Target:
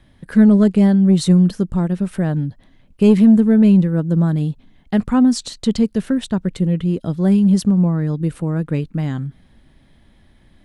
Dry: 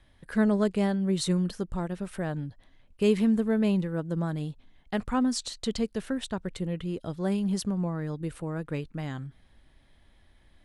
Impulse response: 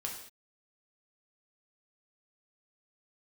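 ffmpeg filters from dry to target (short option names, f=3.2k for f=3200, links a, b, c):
-af "equalizer=f=190:t=o:w=1.7:g=9.5,acontrast=48"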